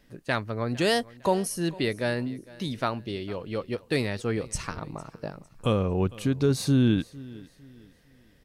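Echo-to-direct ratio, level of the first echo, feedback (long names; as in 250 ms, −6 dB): −20.5 dB, −21.0 dB, 34%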